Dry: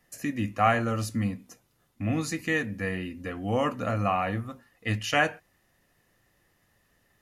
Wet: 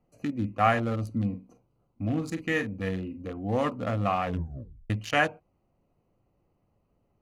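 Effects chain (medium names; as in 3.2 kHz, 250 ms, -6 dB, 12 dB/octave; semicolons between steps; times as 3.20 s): local Wiener filter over 25 samples; 1.29–3.32 s: doubling 42 ms -10 dB; 4.25 s: tape stop 0.65 s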